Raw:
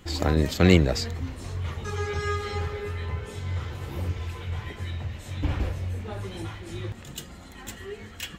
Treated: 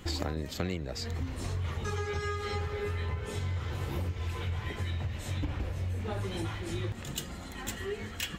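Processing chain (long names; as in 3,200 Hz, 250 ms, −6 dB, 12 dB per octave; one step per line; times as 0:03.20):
downward compressor 16 to 1, threshold −32 dBFS, peak gain reduction 21.5 dB
level +2.5 dB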